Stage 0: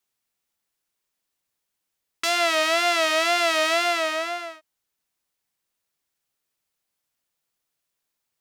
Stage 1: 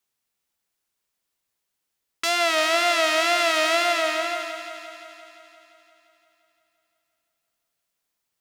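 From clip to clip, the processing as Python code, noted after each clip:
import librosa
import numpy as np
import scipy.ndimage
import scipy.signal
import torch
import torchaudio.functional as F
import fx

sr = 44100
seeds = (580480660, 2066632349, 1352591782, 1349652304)

y = fx.echo_heads(x, sr, ms=173, heads='first and second', feedback_pct=58, wet_db=-13.5)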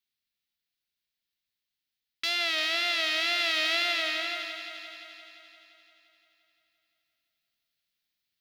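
y = fx.graphic_eq(x, sr, hz=(500, 1000, 2000, 4000, 8000), db=(-7, -10, 3, 9, -10))
y = fx.rider(y, sr, range_db=3, speed_s=2.0)
y = y * librosa.db_to_amplitude(-6.5)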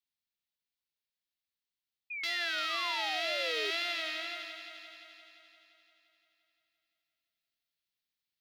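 y = fx.spec_paint(x, sr, seeds[0], shape='fall', start_s=2.1, length_s=1.61, low_hz=390.0, high_hz=2500.0, level_db=-32.0)
y = y * librosa.db_to_amplitude(-7.0)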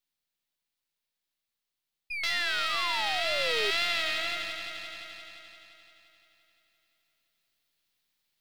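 y = np.where(x < 0.0, 10.0 ** (-7.0 / 20.0) * x, x)
y = fx.rider(y, sr, range_db=5, speed_s=2.0)
y = y * librosa.db_to_amplitude(8.0)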